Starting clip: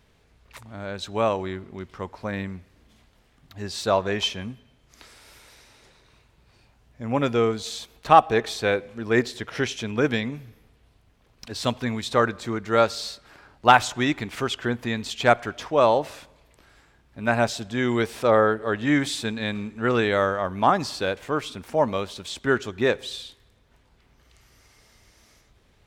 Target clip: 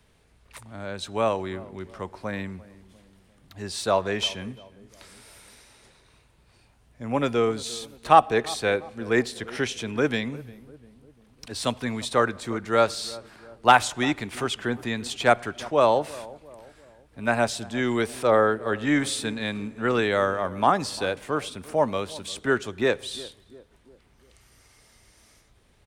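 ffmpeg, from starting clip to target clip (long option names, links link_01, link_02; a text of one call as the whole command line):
ffmpeg -i in.wav -filter_complex "[0:a]equalizer=frequency=9200:width_type=o:width=0.29:gain=10,acrossover=split=160|470|3500[link_01][link_02][link_03][link_04];[link_01]asoftclip=type=tanh:threshold=-36dB[link_05];[link_05][link_02][link_03][link_04]amix=inputs=4:normalize=0,asplit=2[link_06][link_07];[link_07]adelay=348,lowpass=frequency=860:poles=1,volume=-18dB,asplit=2[link_08][link_09];[link_09]adelay=348,lowpass=frequency=860:poles=1,volume=0.52,asplit=2[link_10][link_11];[link_11]adelay=348,lowpass=frequency=860:poles=1,volume=0.52,asplit=2[link_12][link_13];[link_13]adelay=348,lowpass=frequency=860:poles=1,volume=0.52[link_14];[link_06][link_08][link_10][link_12][link_14]amix=inputs=5:normalize=0,volume=-1dB" out.wav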